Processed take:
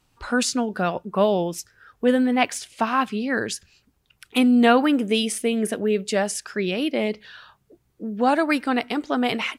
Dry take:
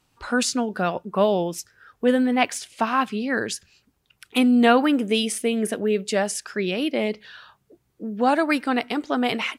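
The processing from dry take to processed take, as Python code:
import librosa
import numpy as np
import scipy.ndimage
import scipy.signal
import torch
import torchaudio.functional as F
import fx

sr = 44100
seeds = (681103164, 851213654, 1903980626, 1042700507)

y = fx.low_shelf(x, sr, hz=66.0, db=8.0)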